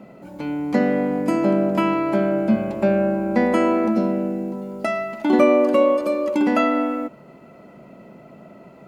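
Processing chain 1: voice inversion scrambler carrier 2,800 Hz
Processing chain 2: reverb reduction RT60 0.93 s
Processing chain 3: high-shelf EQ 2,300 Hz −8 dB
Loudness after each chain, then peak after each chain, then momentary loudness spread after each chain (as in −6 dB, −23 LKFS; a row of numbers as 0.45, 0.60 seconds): −17.0, −22.5, −20.5 LKFS; −3.5, −5.5, −4.5 dBFS; 11, 14, 11 LU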